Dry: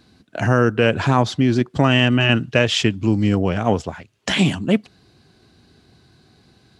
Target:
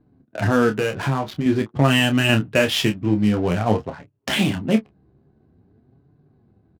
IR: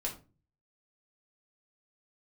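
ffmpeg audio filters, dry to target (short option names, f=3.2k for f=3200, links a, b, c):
-filter_complex "[0:a]asettb=1/sr,asplit=3[a][b][c];[a]atrim=end=0.784[d];[b]atrim=start=0.78:end=1.46,asetpts=PTS-STARTPTS,afade=t=in:d=0.004:c=qsin,afade=t=out:st=0.676:d=0.004:c=qsin,acompressor=threshold=-17dB:ratio=6[e];[c]atrim=start=1.456[f];[d][e]acrossfade=d=0.004:c1=hsin:c2=qsin[g];[g][f]acrossfade=d=0.004:c1=qsin:c2=hsin,flanger=delay=6.8:depth=8.6:regen=32:speed=0.49:shape=sinusoidal,adynamicsmooth=sensitivity=8:basefreq=540,asplit=2[h][i];[i]adelay=28,volume=-8dB[j];[h][j]amix=inputs=2:normalize=0,alimiter=level_in=4.5dB:limit=-1dB:release=50:level=0:latency=1,volume=-3dB"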